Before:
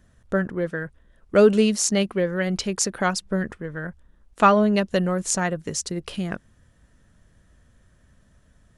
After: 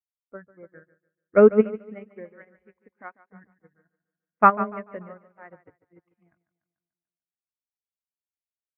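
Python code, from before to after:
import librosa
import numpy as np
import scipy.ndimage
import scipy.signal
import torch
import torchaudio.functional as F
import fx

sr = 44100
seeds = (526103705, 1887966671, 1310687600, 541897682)

p1 = scipy.signal.sosfilt(scipy.signal.cheby1(5, 1.0, 2200.0, 'lowpass', fs=sr, output='sos'), x)
p2 = fx.noise_reduce_blind(p1, sr, reduce_db=20)
p3 = fx.level_steps(p2, sr, step_db=16)
p4 = p2 + (p3 * librosa.db_to_amplitude(-0.5))
p5 = scipy.signal.sosfilt(scipy.signal.butter(2, 50.0, 'highpass', fs=sr, output='sos'), p4)
p6 = p5 + fx.echo_feedback(p5, sr, ms=146, feedback_pct=60, wet_db=-7, dry=0)
p7 = fx.upward_expand(p6, sr, threshold_db=-37.0, expansion=2.5)
y = p7 * librosa.db_to_amplitude(-1.0)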